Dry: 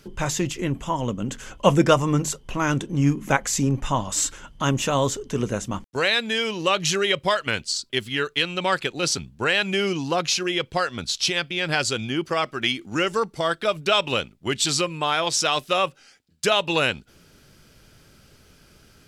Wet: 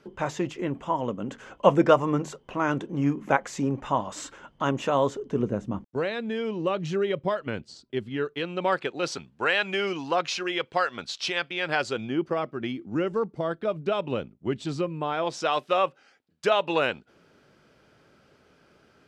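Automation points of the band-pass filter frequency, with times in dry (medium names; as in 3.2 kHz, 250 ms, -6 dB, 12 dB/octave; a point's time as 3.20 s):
band-pass filter, Q 0.56
5.01 s 640 Hz
5.55 s 250 Hz
8.06 s 250 Hz
9.30 s 990 Hz
11.60 s 990 Hz
12.52 s 240 Hz
14.99 s 240 Hz
15.54 s 680 Hz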